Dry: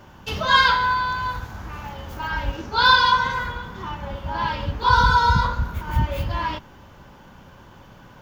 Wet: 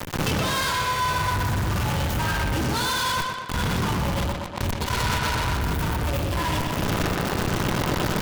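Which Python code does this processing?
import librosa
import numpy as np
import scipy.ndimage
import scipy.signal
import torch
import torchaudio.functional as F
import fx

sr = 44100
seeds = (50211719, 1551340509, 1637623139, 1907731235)

y = fx.high_shelf(x, sr, hz=3900.0, db=9.5)
y = fx.gate_flip(y, sr, shuts_db=-17.0, range_db=-24, at=(3.2, 5.31))
y = fx.peak_eq(y, sr, hz=120.0, db=13.5, octaves=2.3)
y = fx.mod_noise(y, sr, seeds[0], snr_db=27)
y = fx.fuzz(y, sr, gain_db=39.0, gate_db=-34.0)
y = fx.over_compress(y, sr, threshold_db=-26.0, ratio=-1.0)
y = fx.echo_tape(y, sr, ms=122, feedback_pct=60, wet_db=-3.5, lp_hz=5000.0, drive_db=7.0, wow_cents=22)
y = 10.0 ** (-25.0 / 20.0) * np.tanh(y / 10.0 ** (-25.0 / 20.0))
y = fx.end_taper(y, sr, db_per_s=100.0)
y = y * 10.0 ** (6.0 / 20.0)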